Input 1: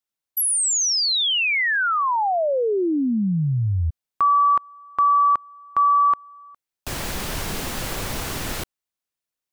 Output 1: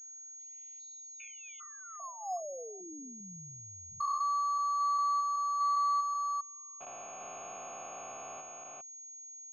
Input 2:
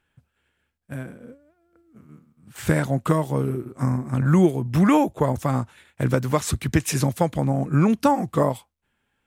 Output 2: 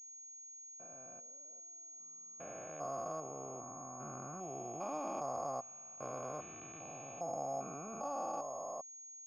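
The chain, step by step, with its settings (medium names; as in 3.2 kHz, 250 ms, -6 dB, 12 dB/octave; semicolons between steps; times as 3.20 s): spectrogram pixelated in time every 400 ms; vowel filter a; class-D stage that switches slowly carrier 6.6 kHz; trim -1.5 dB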